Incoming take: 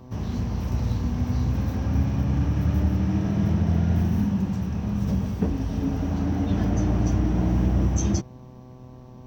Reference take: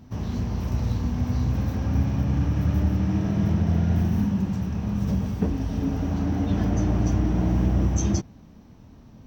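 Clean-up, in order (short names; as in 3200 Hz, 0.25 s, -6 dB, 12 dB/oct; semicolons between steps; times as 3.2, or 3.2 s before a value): de-hum 126.5 Hz, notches 9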